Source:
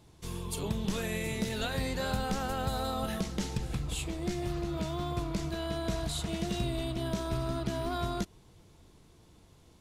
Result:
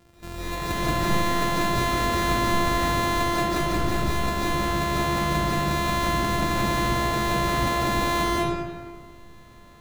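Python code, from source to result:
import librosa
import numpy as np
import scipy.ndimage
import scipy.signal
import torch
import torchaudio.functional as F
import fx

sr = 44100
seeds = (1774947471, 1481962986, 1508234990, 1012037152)

y = np.r_[np.sort(x[:len(x) // 128 * 128].reshape(-1, 128), axis=1).ravel(), x[len(x) // 128 * 128:]]
y = fx.rev_freeverb(y, sr, rt60_s=1.6, hf_ratio=0.7, predelay_ms=105, drr_db=-8.5)
y = F.gain(torch.from_numpy(y), 1.5).numpy()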